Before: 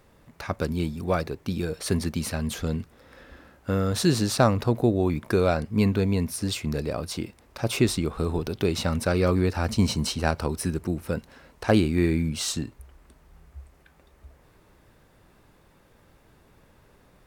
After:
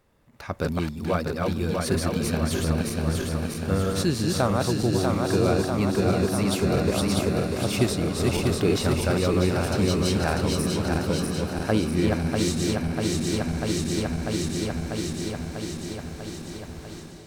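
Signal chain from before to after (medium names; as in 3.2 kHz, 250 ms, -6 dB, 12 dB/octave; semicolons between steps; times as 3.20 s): backward echo that repeats 322 ms, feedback 80%, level -2.5 dB; level rider gain up to 15 dB; echo that smears into a reverb 1092 ms, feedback 49%, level -13 dB; trim -8 dB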